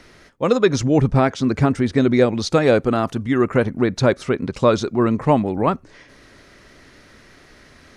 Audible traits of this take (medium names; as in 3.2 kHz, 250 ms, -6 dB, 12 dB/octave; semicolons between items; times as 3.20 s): noise floor -49 dBFS; spectral tilt -6.0 dB/octave